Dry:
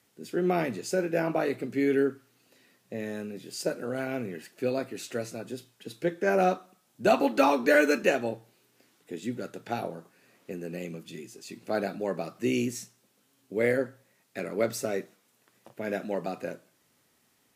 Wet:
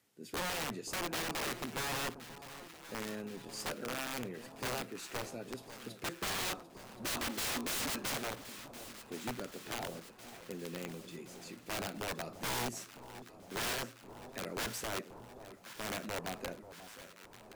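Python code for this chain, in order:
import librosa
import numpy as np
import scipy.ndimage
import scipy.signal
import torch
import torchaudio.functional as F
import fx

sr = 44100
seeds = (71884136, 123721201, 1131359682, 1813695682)

y = (np.mod(10.0 ** (25.0 / 20.0) * x + 1.0, 2.0) - 1.0) / 10.0 ** (25.0 / 20.0)
y = fx.echo_alternate(y, sr, ms=535, hz=1000.0, feedback_pct=81, wet_db=-12)
y = F.gain(torch.from_numpy(y), -6.5).numpy()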